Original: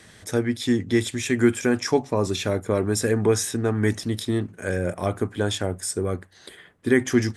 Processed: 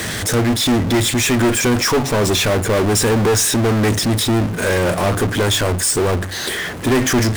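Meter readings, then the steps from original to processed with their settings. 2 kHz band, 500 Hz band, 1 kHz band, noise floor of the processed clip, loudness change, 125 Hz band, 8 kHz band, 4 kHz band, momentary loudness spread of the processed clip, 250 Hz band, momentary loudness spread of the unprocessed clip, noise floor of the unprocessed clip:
+9.0 dB, +6.0 dB, +11.5 dB, −25 dBFS, +7.5 dB, +8.5 dB, +12.0 dB, +13.0 dB, 4 LU, +5.5 dB, 7 LU, −51 dBFS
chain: asymmetric clip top −22 dBFS
power curve on the samples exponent 0.35

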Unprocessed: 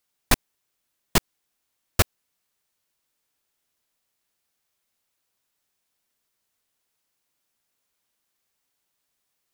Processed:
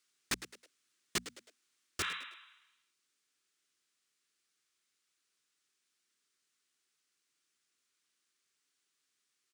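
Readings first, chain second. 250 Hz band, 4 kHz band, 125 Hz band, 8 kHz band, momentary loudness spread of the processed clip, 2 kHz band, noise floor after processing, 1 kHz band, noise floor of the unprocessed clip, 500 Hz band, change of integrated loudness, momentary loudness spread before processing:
−17.0 dB, −10.0 dB, −23.5 dB, −12.0 dB, 15 LU, −10.0 dB, −83 dBFS, −14.5 dB, −78 dBFS, −17.5 dB, −14.0 dB, 1 LU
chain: Savitzky-Golay smoothing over 9 samples
brickwall limiter −15.5 dBFS, peak gain reduction 10 dB
high-pass filter 180 Hz 6 dB per octave
flat-topped bell 700 Hz −11 dB 1.2 octaves
on a send: echo with shifted repeats 106 ms, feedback 38%, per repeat +88 Hz, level −18.5 dB
on the sum: healed spectral selection 0:02.05–0:02.94, 850–4,000 Hz both
bass and treble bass −5 dB, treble +2 dB
soft clipping −29 dBFS, distortion −9 dB
mains-hum notches 60/120/180/240 Hz
speech leveller 0.5 s
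level +1 dB

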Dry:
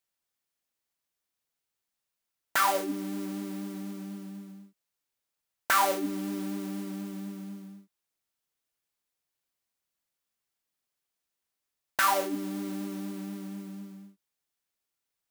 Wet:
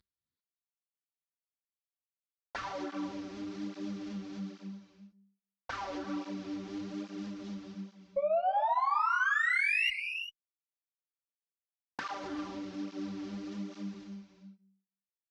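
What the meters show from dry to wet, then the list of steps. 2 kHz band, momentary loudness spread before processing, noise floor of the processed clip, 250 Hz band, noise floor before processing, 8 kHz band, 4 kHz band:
+3.0 dB, 19 LU, below −85 dBFS, −3.5 dB, below −85 dBFS, −17.0 dB, −2.5 dB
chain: variable-slope delta modulation 32 kbit/s
low-shelf EQ 270 Hz +7.5 dB
hum removal 195.1 Hz, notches 33
brickwall limiter −24.5 dBFS, peak gain reduction 10 dB
downward compressor, threshold −42 dBFS, peak gain reduction 13 dB
sound drawn into the spectrogram rise, 0:08.16–0:09.90, 550–2,900 Hz −34 dBFS
harmonic generator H 2 −20 dB, 4 −26 dB, 6 −26 dB, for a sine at −26 dBFS
reverb whose tail is shaped and stops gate 420 ms rising, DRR 8 dB
through-zero flanger with one copy inverted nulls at 1.2 Hz, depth 7.2 ms
level +7.5 dB

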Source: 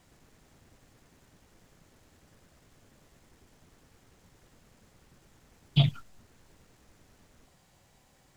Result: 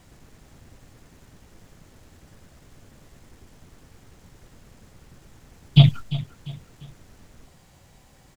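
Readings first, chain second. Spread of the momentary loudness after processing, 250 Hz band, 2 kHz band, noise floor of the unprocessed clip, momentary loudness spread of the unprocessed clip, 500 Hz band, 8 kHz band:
17 LU, +10.5 dB, +7.0 dB, −64 dBFS, 3 LU, +7.5 dB, can't be measured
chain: low-shelf EQ 170 Hz +6 dB
on a send: repeating echo 347 ms, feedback 38%, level −15.5 dB
on the sum: level +7 dB

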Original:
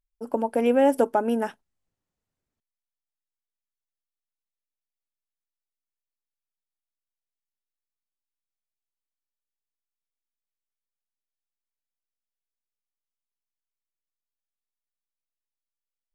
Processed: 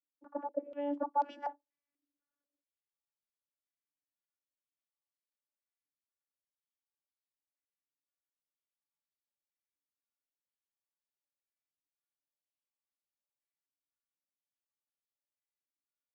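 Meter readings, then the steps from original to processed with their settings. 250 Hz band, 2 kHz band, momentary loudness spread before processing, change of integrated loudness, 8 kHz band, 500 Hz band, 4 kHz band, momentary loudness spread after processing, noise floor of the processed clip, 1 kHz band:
−16.5 dB, −18.5 dB, 10 LU, −14.0 dB, below −25 dB, −17.0 dB, −16.0 dB, 9 LU, below −85 dBFS, −7.5 dB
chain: tape wow and flutter 25 cents
channel vocoder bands 32, saw 287 Hz
low-shelf EQ 410 Hz −9.5 dB
reversed playback
downward compressor 4 to 1, threshold −36 dBFS, peak gain reduction 16 dB
reversed playback
low-pass on a step sequencer 4.1 Hz 340–4,600 Hz

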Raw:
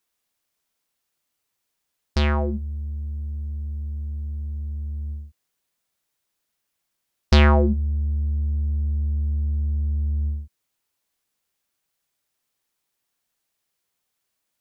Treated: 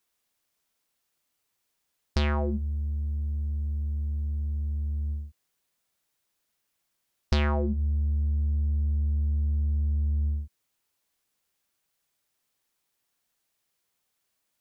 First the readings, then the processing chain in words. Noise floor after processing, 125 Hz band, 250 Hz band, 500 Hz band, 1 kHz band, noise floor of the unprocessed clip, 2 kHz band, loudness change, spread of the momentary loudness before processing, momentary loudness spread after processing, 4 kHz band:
−78 dBFS, −3.5 dB, −7.0 dB, −8.0 dB, −8.5 dB, −79 dBFS, −9.0 dB, −4.5 dB, 13 LU, 5 LU, −8.5 dB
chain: downward compressor 6 to 1, threshold −23 dBFS, peak gain reduction 10.5 dB

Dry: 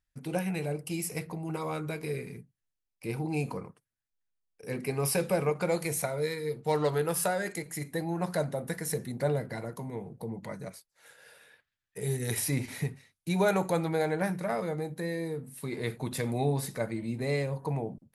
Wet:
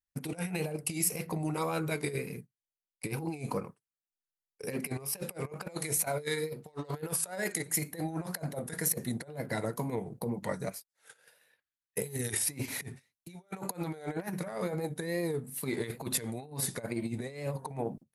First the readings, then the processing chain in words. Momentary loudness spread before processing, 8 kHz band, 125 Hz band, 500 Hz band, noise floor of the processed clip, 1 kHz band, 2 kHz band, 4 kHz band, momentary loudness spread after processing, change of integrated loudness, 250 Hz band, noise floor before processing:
11 LU, +3.5 dB, −4.5 dB, −5.5 dB, below −85 dBFS, −5.0 dB, −2.5 dB, −0.5 dB, 9 LU, −2.5 dB, −3.0 dB, −85 dBFS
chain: transient designer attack +4 dB, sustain −3 dB
tape wow and flutter 82 cents
compressor whose output falls as the input rises −34 dBFS, ratio −0.5
low-shelf EQ 87 Hz −7.5 dB
noise gate −47 dBFS, range −15 dB
high-shelf EQ 7,600 Hz +6.5 dB

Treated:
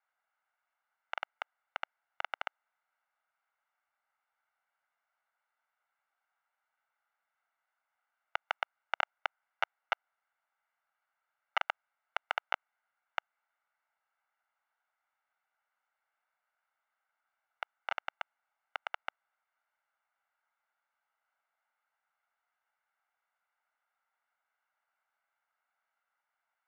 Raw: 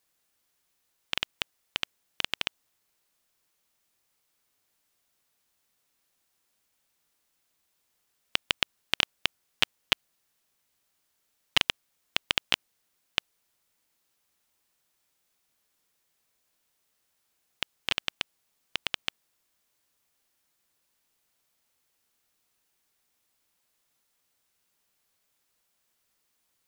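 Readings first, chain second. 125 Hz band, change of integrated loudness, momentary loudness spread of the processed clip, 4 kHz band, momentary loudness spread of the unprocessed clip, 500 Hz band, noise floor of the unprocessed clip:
below −25 dB, −9.0 dB, 11 LU, −17.0 dB, 11 LU, −2.0 dB, −76 dBFS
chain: lower of the sound and its delayed copy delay 1.4 ms
pitch vibrato 2.6 Hz 5.7 cents
flat-topped band-pass 1,200 Hz, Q 1.2
level +4 dB

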